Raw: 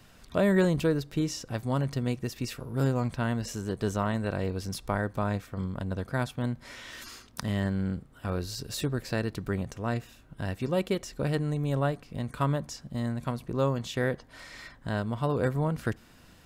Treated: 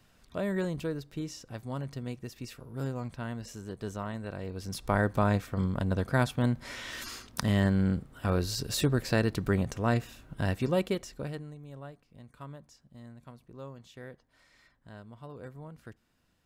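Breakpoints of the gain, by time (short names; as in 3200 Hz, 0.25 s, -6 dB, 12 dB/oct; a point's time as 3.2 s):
4.45 s -8 dB
5 s +3.5 dB
10.5 s +3.5 dB
11.16 s -5 dB
11.59 s -17.5 dB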